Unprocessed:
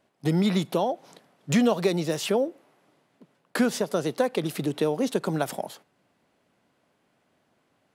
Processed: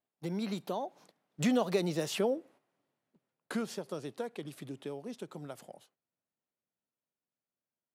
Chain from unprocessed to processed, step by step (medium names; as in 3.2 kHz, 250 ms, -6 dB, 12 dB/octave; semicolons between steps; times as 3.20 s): Doppler pass-by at 2.00 s, 27 m/s, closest 24 m; gate -52 dBFS, range -9 dB; trim -6 dB